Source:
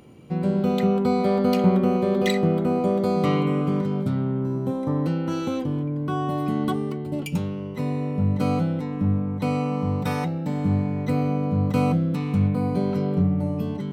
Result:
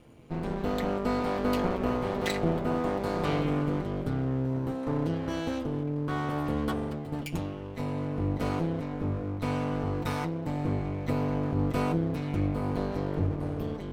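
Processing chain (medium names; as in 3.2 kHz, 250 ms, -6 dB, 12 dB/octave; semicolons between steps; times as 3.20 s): half-wave rectifier; comb of notches 190 Hz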